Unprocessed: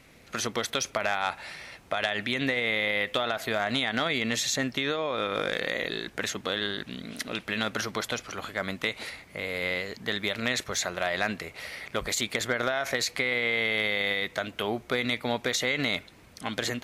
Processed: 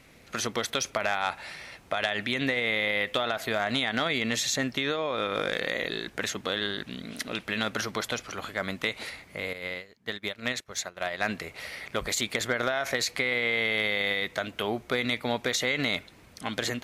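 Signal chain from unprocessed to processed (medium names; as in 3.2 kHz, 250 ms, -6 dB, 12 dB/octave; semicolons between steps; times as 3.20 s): 9.53–11.23 s: upward expansion 2.5:1, over -41 dBFS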